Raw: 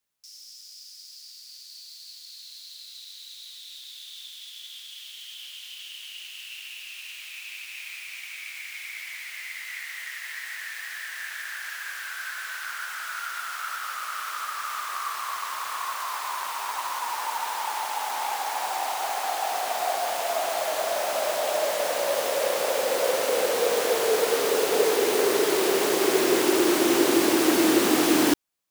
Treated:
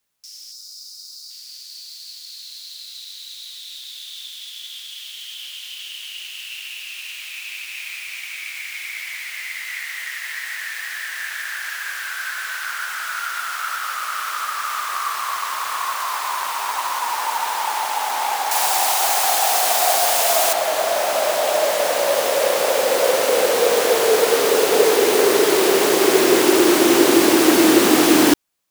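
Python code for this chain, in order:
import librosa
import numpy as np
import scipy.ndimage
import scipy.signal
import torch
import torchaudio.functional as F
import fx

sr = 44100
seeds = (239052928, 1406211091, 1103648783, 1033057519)

y = fx.spec_box(x, sr, start_s=0.52, length_s=0.79, low_hz=1500.0, high_hz=3600.0, gain_db=-12)
y = fx.high_shelf(y, sr, hz=3700.0, db=11.0, at=(18.51, 20.53))
y = y * librosa.db_to_amplitude(7.0)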